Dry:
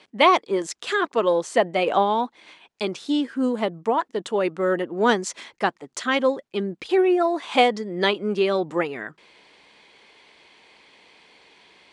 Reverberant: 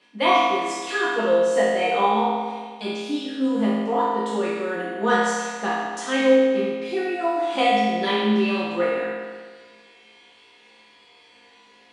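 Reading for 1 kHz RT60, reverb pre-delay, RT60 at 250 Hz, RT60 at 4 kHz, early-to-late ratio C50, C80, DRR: 1.6 s, 4 ms, 1.6 s, 1.5 s, -2.5 dB, 0.0 dB, -10.5 dB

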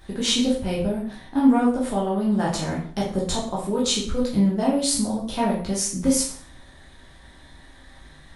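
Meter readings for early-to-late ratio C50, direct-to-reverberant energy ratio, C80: 4.0 dB, -6.0 dB, 9.0 dB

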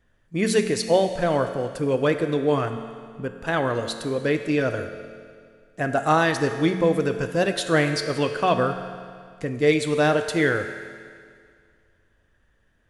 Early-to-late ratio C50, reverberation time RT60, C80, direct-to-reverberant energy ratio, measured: 8.5 dB, 2.1 s, 9.0 dB, 6.5 dB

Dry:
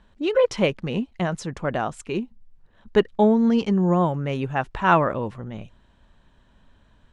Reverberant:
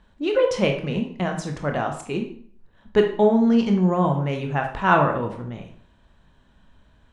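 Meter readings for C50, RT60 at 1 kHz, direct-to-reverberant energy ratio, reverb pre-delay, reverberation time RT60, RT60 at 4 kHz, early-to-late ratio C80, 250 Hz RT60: 7.5 dB, 0.55 s, 3.0 dB, 17 ms, 0.55 s, 0.45 s, 11.5 dB, 0.55 s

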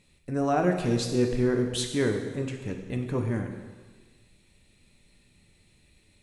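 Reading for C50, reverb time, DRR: 6.0 dB, 1.4 s, 3.0 dB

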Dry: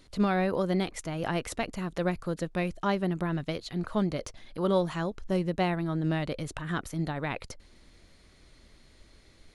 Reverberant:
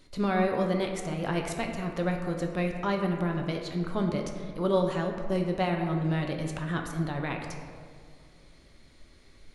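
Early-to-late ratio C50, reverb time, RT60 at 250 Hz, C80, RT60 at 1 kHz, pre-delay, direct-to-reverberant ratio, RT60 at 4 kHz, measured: 4.5 dB, 2.2 s, 2.2 s, 6.0 dB, 2.0 s, 5 ms, 2.0 dB, 1.0 s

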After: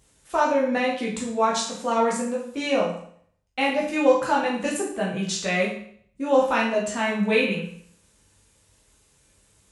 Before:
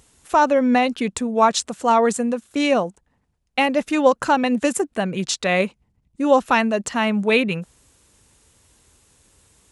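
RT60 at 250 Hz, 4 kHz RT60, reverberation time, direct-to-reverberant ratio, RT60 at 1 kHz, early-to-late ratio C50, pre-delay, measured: 0.60 s, 0.55 s, 0.60 s, -5.0 dB, 0.60 s, 4.5 dB, 10 ms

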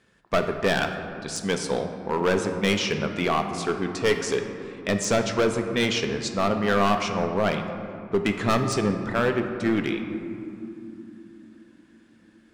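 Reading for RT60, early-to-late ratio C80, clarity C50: 3.0 s, 8.0 dB, 6.5 dB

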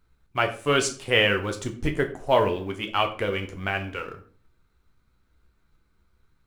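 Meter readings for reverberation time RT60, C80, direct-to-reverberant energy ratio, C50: 0.45 s, 16.5 dB, 5.0 dB, 12.5 dB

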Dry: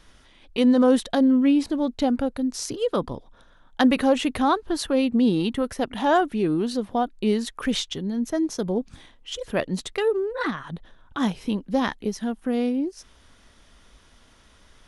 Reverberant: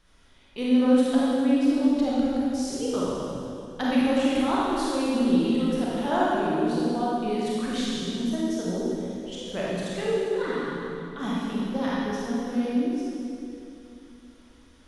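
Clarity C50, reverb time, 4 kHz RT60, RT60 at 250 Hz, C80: -5.0 dB, 2.7 s, 2.3 s, 3.5 s, -2.0 dB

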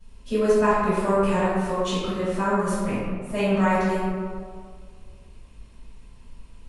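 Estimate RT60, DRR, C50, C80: 1.9 s, -18.0 dB, -3.5 dB, -1.0 dB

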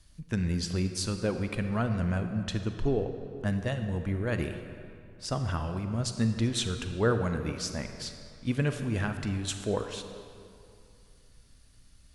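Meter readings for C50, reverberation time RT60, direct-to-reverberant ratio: 7.5 dB, 2.6 s, 7.0 dB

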